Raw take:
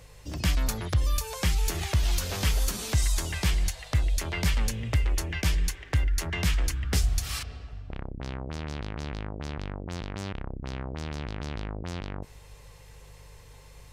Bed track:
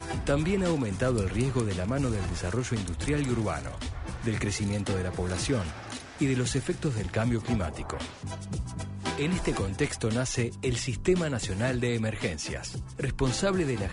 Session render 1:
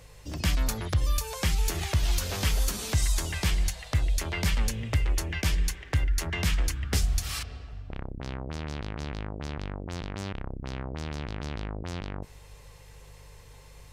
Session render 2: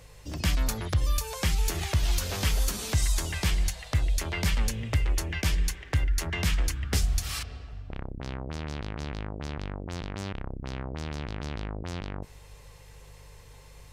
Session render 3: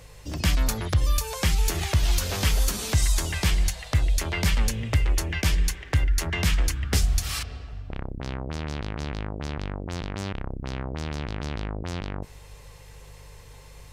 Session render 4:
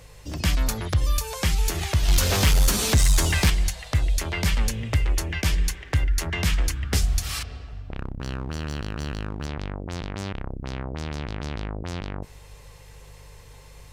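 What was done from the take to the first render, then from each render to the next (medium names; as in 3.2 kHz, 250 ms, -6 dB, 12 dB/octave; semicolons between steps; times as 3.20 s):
de-hum 60 Hz, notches 3
no audible change
trim +3.5 dB
2.08–3.50 s: waveshaping leveller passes 2; 7.99–9.46 s: comb filter that takes the minimum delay 0.69 ms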